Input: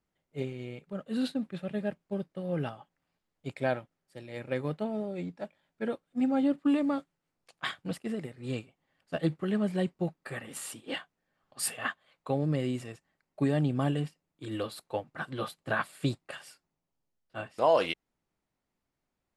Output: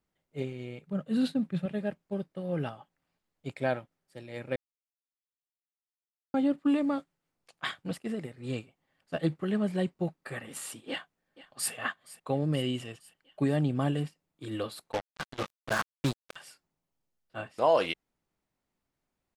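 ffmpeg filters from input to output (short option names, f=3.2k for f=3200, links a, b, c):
-filter_complex "[0:a]asettb=1/sr,asplit=3[a][b][c];[a]atrim=end=0.834[d];[b]atrim=start=0.83:end=1.66,asetpts=PTS-STARTPTS,afade=t=in:d=0.004:c=qsin,afade=t=out:st=0.826:d=0.004:c=qsin,equalizer=f=150:w=1.5:g=11[e];[c]atrim=start=1.656[f];[d][e]acrossfade=d=0.004:c1=hsin:c2=qsin[g];[g][f]acrossfade=d=0.004:c1=qsin:c2=hsin,asplit=2[h][i];[i]afade=t=in:st=10.89:d=0.01,afade=t=out:st=11.72:d=0.01,aecho=0:1:470|940|1410|1880|2350|2820:0.125893|0.0818302|0.0531896|0.0345732|0.0224726|0.0146072[j];[h][j]amix=inputs=2:normalize=0,asettb=1/sr,asplit=3[k][l][m];[k]atrim=end=12.544[n];[l]atrim=start=12.54:end=13.41,asetpts=PTS-STARTPTS,afade=t=in:d=0.004:c=qsin,afade=t=out:st=0.866:d=0.004:c=qsin,equalizer=f=3k:t=o:w=0.21:g=13.5[o];[m]atrim=start=13.406[p];[n][o]acrossfade=d=0.004:c1=hsin:c2=qsin[q];[q][p]acrossfade=d=0.004:c1=qsin:c2=hsin,asettb=1/sr,asplit=3[r][s][t];[r]atrim=end=14.924[u];[s]atrim=start=14.92:end=16.36,asetpts=PTS-STARTPTS,afade=t=in:d=0.004:c=qsin,afade=t=out:st=1.436:d=0.004:c=qsin,acrusher=bits=4:mix=0:aa=0.5[v];[t]atrim=start=16.356[w];[u][v]acrossfade=d=0.004:c1=hsin:c2=qsin[x];[x][w]acrossfade=d=0.004:c1=qsin:c2=hsin,asplit=3[y][z][aa];[y]atrim=end=4.56,asetpts=PTS-STARTPTS,afade=t=out:st=4.556:d=0.004:c=hsin[ab];[z]atrim=start=4.56:end=6.34,asetpts=PTS-STARTPTS,volume=0[ac];[aa]atrim=start=6.34,asetpts=PTS-STARTPTS,afade=t=in:d=0.004:c=hsin[ad];[ab][ac][ad]concat=n=3:v=0:a=1"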